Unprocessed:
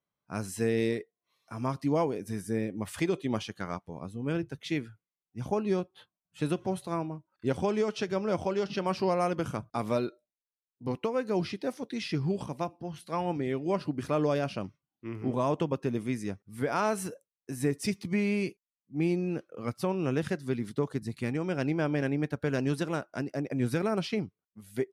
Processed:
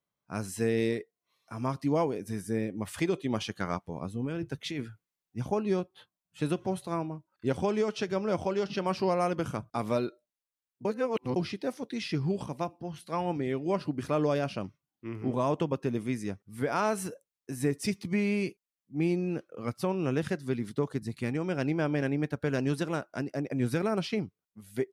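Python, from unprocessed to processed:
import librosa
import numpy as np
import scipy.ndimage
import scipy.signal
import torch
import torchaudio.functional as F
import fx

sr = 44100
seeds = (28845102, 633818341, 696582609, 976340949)

y = fx.over_compress(x, sr, threshold_db=-33.0, ratio=-1.0, at=(3.4, 5.41), fade=0.02)
y = fx.edit(y, sr, fx.reverse_span(start_s=10.85, length_s=0.51), tone=tone)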